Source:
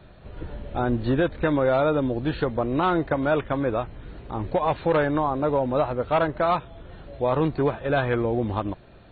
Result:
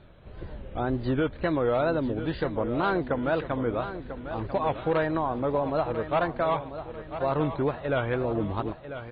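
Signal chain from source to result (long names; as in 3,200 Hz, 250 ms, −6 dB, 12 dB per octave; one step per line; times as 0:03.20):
tape wow and flutter 150 cents
on a send: repeating echo 994 ms, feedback 41%, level −11 dB
on the sum: level −4 dB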